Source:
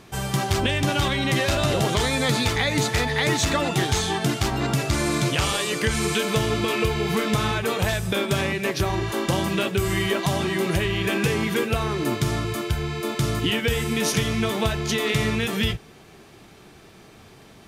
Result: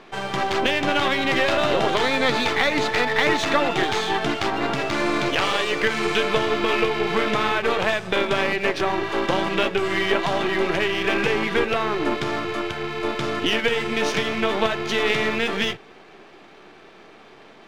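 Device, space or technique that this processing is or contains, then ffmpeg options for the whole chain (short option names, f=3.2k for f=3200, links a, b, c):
crystal radio: -af "highpass=320,lowpass=3.1k,aeval=exprs='if(lt(val(0),0),0.447*val(0),val(0))':c=same,volume=7dB"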